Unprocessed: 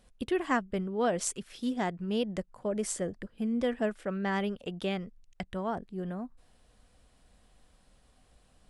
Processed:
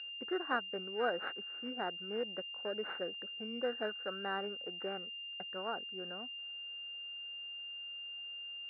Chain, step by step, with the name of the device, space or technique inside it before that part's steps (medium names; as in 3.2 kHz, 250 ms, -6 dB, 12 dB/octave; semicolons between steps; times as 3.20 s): toy sound module (decimation joined by straight lines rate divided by 4×; class-D stage that switches slowly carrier 2.8 kHz; cabinet simulation 580–3800 Hz, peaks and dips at 640 Hz -7 dB, 990 Hz -9 dB, 1.5 kHz +10 dB, 2.2 kHz -7 dB, 3.1 kHz -9 dB); trim +1.5 dB